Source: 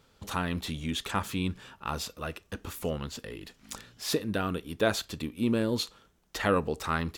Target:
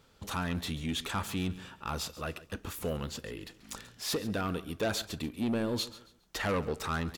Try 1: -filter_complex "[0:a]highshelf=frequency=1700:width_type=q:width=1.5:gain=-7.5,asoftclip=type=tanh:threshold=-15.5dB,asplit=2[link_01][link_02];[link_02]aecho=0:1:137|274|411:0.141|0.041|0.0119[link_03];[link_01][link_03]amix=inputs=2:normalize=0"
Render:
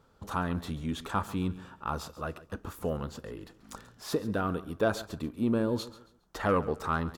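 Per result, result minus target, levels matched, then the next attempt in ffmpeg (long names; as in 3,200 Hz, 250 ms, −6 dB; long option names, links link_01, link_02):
4,000 Hz band −9.5 dB; soft clipping: distortion −11 dB
-filter_complex "[0:a]asoftclip=type=tanh:threshold=-15.5dB,asplit=2[link_01][link_02];[link_02]aecho=0:1:137|274|411:0.141|0.041|0.0119[link_03];[link_01][link_03]amix=inputs=2:normalize=0"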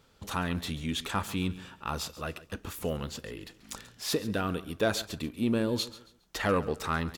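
soft clipping: distortion −11 dB
-filter_complex "[0:a]asoftclip=type=tanh:threshold=-25.5dB,asplit=2[link_01][link_02];[link_02]aecho=0:1:137|274|411:0.141|0.041|0.0119[link_03];[link_01][link_03]amix=inputs=2:normalize=0"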